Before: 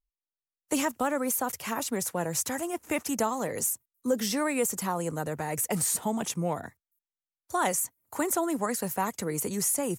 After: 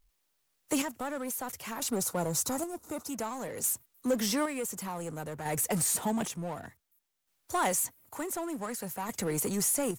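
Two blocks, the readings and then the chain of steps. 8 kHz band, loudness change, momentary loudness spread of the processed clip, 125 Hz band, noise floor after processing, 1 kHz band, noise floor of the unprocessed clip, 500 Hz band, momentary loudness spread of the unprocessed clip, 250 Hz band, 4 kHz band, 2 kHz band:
−2.0 dB, −2.5 dB, 11 LU, −2.0 dB, −77 dBFS, −4.5 dB, below −85 dBFS, −4.0 dB, 6 LU, −3.0 dB, −1.0 dB, −4.5 dB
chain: square-wave tremolo 0.55 Hz, depth 65%, duty 45%
gain on a spectral selection 0:01.89–0:03.09, 1,500–3,600 Hz −13 dB
power curve on the samples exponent 0.7
level −4 dB

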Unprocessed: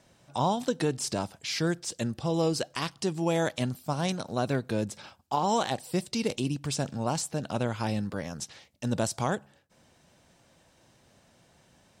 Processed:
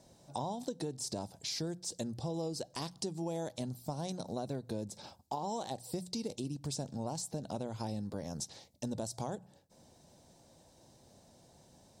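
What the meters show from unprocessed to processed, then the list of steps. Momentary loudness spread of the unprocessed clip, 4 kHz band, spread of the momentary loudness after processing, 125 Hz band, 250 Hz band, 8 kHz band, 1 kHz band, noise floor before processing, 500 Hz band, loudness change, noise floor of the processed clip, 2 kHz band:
7 LU, −8.0 dB, 4 LU, −9.5 dB, −9.0 dB, −6.5 dB, −11.0 dB, −63 dBFS, −9.5 dB, −9.5 dB, −64 dBFS, −18.5 dB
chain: flat-topped bell 1,900 Hz −11 dB
mains-hum notches 60/120/180 Hz
downward compressor 5 to 1, threshold −37 dBFS, peak gain reduction 13 dB
level +1 dB

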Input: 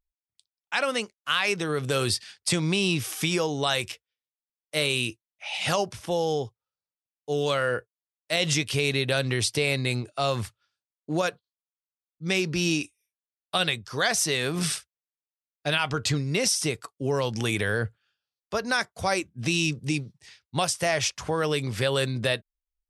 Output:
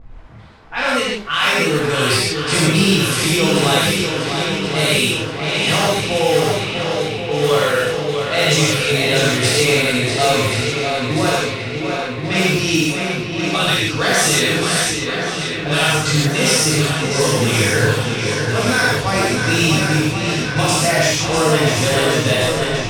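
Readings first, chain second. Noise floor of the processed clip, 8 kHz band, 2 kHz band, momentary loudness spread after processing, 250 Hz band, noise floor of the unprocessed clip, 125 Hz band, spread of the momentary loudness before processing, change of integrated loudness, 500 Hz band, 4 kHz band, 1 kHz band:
−25 dBFS, +11.0 dB, +11.5 dB, 6 LU, +11.5 dB, below −85 dBFS, +11.5 dB, 8 LU, +10.5 dB, +11.0 dB, +11.5 dB, +11.5 dB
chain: converter with a step at zero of −32 dBFS
on a send: feedback echo with a long and a short gap by turns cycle 1,078 ms, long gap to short 1.5 to 1, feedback 61%, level −6 dB
on the sum: reverb whose tail is shaped and stops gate 190 ms flat, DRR −7.5 dB
low-pass that shuts in the quiet parts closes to 860 Hz, open at −12 dBFS

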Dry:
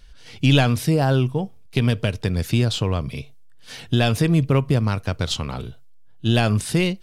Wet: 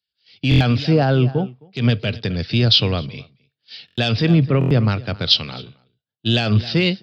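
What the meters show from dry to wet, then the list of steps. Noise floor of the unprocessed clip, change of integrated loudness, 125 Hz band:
−43 dBFS, +3.0 dB, +2.0 dB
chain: downsampling to 11,025 Hz
high-pass filter 100 Hz 24 dB per octave
parametric band 1,000 Hz −7.5 dB 0.3 octaves
soft clipping −4 dBFS, distortion −27 dB
high-shelf EQ 4,100 Hz +10 dB
single-tap delay 264 ms −18 dB
buffer that repeats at 0:00.49/0:03.86/0:04.59, samples 1,024, times 4
boost into a limiter +11.5 dB
multiband upward and downward expander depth 100%
level −7 dB

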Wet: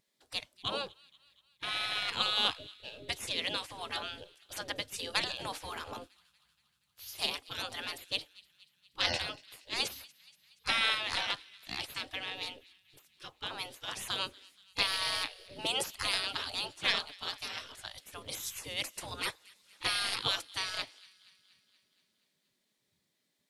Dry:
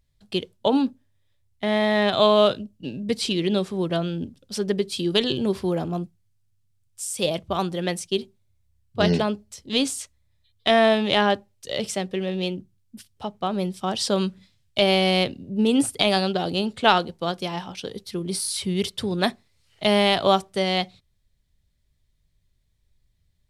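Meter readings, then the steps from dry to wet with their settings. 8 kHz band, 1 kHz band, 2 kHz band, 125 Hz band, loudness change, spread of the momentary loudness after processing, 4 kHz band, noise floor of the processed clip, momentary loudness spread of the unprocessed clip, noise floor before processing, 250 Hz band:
−9.0 dB, −14.0 dB, −6.5 dB, −21.5 dB, −11.0 dB, 15 LU, −6.0 dB, −79 dBFS, 13 LU, −68 dBFS, −27.0 dB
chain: gate on every frequency bin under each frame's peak −20 dB weak
delay with a high-pass on its return 237 ms, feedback 60%, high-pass 1,900 Hz, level −21.5 dB
level +1.5 dB

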